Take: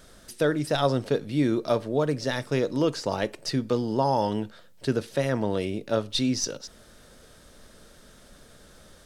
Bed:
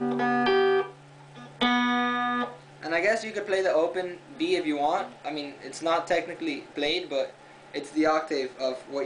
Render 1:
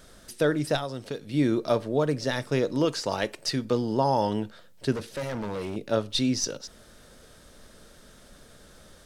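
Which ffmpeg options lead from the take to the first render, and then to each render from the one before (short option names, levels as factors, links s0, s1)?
-filter_complex "[0:a]asettb=1/sr,asplit=3[s0][s1][s2];[s0]atrim=end=0.774[s3];[s1]atrim=start=0.77:end=1.34,asetpts=PTS-STARTPTS,afade=t=in:d=0.004:c=qsin,afade=t=out:st=0.566:d=0.004:c=qsin,acrossover=split=2100|7400[s4][s5][s6];[s4]acompressor=threshold=0.0251:ratio=4[s7];[s5]acompressor=threshold=0.00631:ratio=4[s8];[s6]acompressor=threshold=0.00158:ratio=4[s9];[s7][s8][s9]amix=inputs=3:normalize=0[s10];[s2]atrim=start=1.336[s11];[s3][s10]acrossfade=d=0.004:c1=hsin:c2=qsin[s12];[s12][s11]acrossfade=d=0.004:c1=qsin:c2=hsin,asettb=1/sr,asplit=3[s13][s14][s15];[s13]atrim=end=2.854[s16];[s14]atrim=start=2.85:end=3.65,asetpts=PTS-STARTPTS,afade=t=in:d=0.004:c=qsin,afade=t=out:st=0.796:d=0.004:c=qsin,tiltshelf=f=830:g=-3[s17];[s15]atrim=start=3.646[s18];[s16][s17]acrossfade=d=0.004:c1=hsin:c2=qsin[s19];[s19][s18]acrossfade=d=0.004:c1=qsin:c2=hsin,asettb=1/sr,asplit=3[s20][s21][s22];[s20]atrim=end=4.924[s23];[s21]atrim=start=4.92:end=5.76,asetpts=PTS-STARTPTS,afade=t=in:d=0.004:c=qsin,afade=t=out:st=0.836:d=0.004:c=qsin,asoftclip=type=hard:threshold=0.0376[s24];[s22]atrim=start=5.756[s25];[s23][s24]acrossfade=d=0.004:c1=hsin:c2=qsin[s26];[s26][s25]acrossfade=d=0.004:c1=qsin:c2=hsin"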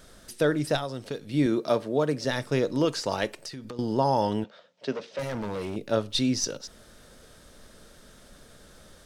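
-filter_complex "[0:a]asettb=1/sr,asplit=3[s0][s1][s2];[s0]atrim=end=1.464[s3];[s1]atrim=start=1.46:end=2.25,asetpts=PTS-STARTPTS,afade=t=in:d=0.004:c=qsin,afade=t=out:st=0.786:d=0.004:c=qsin,highpass=140[s4];[s2]atrim=start=2.246[s5];[s3][s4]acrossfade=d=0.004:c1=hsin:c2=qsin[s6];[s6][s5]acrossfade=d=0.004:c1=qsin:c2=hsin,asettb=1/sr,asplit=3[s7][s8][s9];[s7]atrim=end=3.324[s10];[s8]atrim=start=3.32:end=3.79,asetpts=PTS-STARTPTS,afade=t=in:d=0.004:c=qsin,afade=t=out:st=0.466:d=0.004:c=qsin,acompressor=threshold=0.0178:ratio=10:attack=3.2:release=140:knee=1:detection=peak[s11];[s9]atrim=start=3.786[s12];[s10][s11]acrossfade=d=0.004:c1=hsin:c2=qsin[s13];[s13][s12]acrossfade=d=0.004:c1=qsin:c2=hsin,asettb=1/sr,asplit=3[s14][s15][s16];[s14]atrim=end=4.444[s17];[s15]atrim=start=4.44:end=5.19,asetpts=PTS-STARTPTS,afade=t=in:d=0.004:c=qsin,afade=t=out:st=0.746:d=0.004:c=qsin,highpass=f=190:w=0.5412,highpass=f=190:w=1.3066,equalizer=f=220:t=q:w=4:g=-7,equalizer=f=330:t=q:w=4:g=-9,equalizer=f=590:t=q:w=4:g=5,equalizer=f=1600:t=q:w=4:g=-4,equalizer=f=4400:t=q:w=4:g=-4,lowpass=f=5500:w=0.5412,lowpass=f=5500:w=1.3066[s18];[s16]atrim=start=5.186[s19];[s17][s18]acrossfade=d=0.004:c1=hsin:c2=qsin[s20];[s20][s19]acrossfade=d=0.004:c1=qsin:c2=hsin"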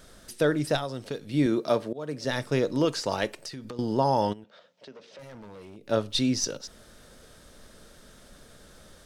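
-filter_complex "[0:a]asplit=3[s0][s1][s2];[s0]afade=t=out:st=4.32:d=0.02[s3];[s1]acompressor=threshold=0.00398:ratio=3:attack=3.2:release=140:knee=1:detection=peak,afade=t=in:st=4.32:d=0.02,afade=t=out:st=5.88:d=0.02[s4];[s2]afade=t=in:st=5.88:d=0.02[s5];[s3][s4][s5]amix=inputs=3:normalize=0,asplit=2[s6][s7];[s6]atrim=end=1.93,asetpts=PTS-STARTPTS,afade=t=out:st=1.926:d=0.004:c=hsin:silence=0.0794328[s8];[s7]atrim=start=1.93,asetpts=PTS-STARTPTS,afade=t=in:d=0.42:silence=0.0794328[s9];[s8][s9]concat=n=2:v=0:a=1"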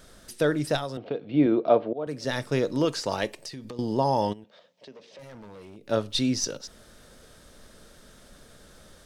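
-filter_complex "[0:a]asettb=1/sr,asplit=3[s0][s1][s2];[s0]atrim=end=0.974[s3];[s1]atrim=start=0.97:end=2.07,asetpts=PTS-STARTPTS,afade=t=in:d=0.004:c=qsin,afade=t=out:st=1.096:d=0.004:c=qsin,highpass=120,equalizer=f=310:t=q:w=4:g=4,equalizer=f=480:t=q:w=4:g=5,equalizer=f=710:t=q:w=4:g=9,equalizer=f=1800:t=q:w=4:g=-6,lowpass=f=3100:w=0.5412,lowpass=f=3100:w=1.3066[s4];[s2]atrim=start=2.066[s5];[s3][s4]acrossfade=d=0.004:c1=hsin:c2=qsin[s6];[s6][s5]acrossfade=d=0.004:c1=qsin:c2=hsin,asettb=1/sr,asplit=3[s7][s8][s9];[s7]atrim=end=3.224[s10];[s8]atrim=start=3.22:end=5.24,asetpts=PTS-STARTPTS,afade=t=in:d=0.004:c=qsin,afade=t=out:st=2.016:d=0.004:c=qsin,equalizer=f=1400:w=5.4:g=-9[s11];[s9]atrim=start=5.236[s12];[s10][s11]acrossfade=d=0.004:c1=hsin:c2=qsin[s13];[s13][s12]acrossfade=d=0.004:c1=qsin:c2=hsin"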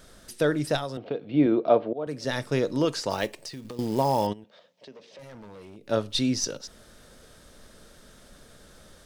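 -filter_complex "[0:a]asettb=1/sr,asplit=3[s0][s1][s2];[s0]atrim=end=3.104[s3];[s1]atrim=start=3.1:end=4.27,asetpts=PTS-STARTPTS,afade=t=in:d=0.004:c=qsin,afade=t=out:st=1.166:d=0.004:c=qsin,acrusher=bits=5:mode=log:mix=0:aa=0.000001[s4];[s2]atrim=start=4.266[s5];[s3][s4]acrossfade=d=0.004:c1=hsin:c2=qsin[s6];[s6][s5]acrossfade=d=0.004:c1=qsin:c2=hsin"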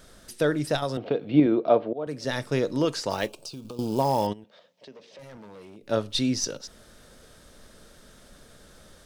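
-filter_complex "[0:a]asettb=1/sr,asplit=3[s0][s1][s2];[s0]atrim=end=0.824[s3];[s1]atrim=start=0.82:end=1.4,asetpts=PTS-STARTPTS,afade=t=in:d=0.004:c=qsin,afade=t=out:st=0.576:d=0.004:c=qsin,acontrast=22[s4];[s2]atrim=start=1.396[s5];[s3][s4]acrossfade=d=0.004:c1=hsin:c2=qsin[s6];[s6][s5]acrossfade=d=0.004:c1=qsin:c2=hsin,asettb=1/sr,asplit=3[s7][s8][s9];[s7]atrim=end=3.284[s10];[s8]atrim=start=3.28:end=4,asetpts=PTS-STARTPTS,afade=t=in:d=0.004:c=qsin,afade=t=out:st=0.716:d=0.004:c=qsin,asuperstop=centerf=1900:order=4:qfactor=1.9[s11];[s9]atrim=start=3.996[s12];[s10][s11]acrossfade=d=0.004:c1=hsin:c2=qsin[s13];[s13][s12]acrossfade=d=0.004:c1=qsin:c2=hsin,asettb=1/sr,asplit=3[s14][s15][s16];[s14]atrim=end=5.374[s17];[s15]atrim=start=5.37:end=5.82,asetpts=PTS-STARTPTS,afade=t=in:d=0.004:c=qsin,afade=t=out:st=0.446:d=0.004:c=qsin,highpass=120[s18];[s16]atrim=start=5.816[s19];[s17][s18]acrossfade=d=0.004:c1=hsin:c2=qsin[s20];[s20][s19]acrossfade=d=0.004:c1=qsin:c2=hsin"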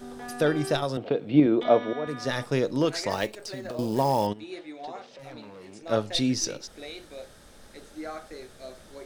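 -filter_complex "[1:a]volume=0.2[s0];[0:a][s0]amix=inputs=2:normalize=0"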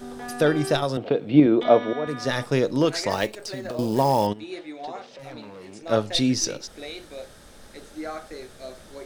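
-af "volume=1.5"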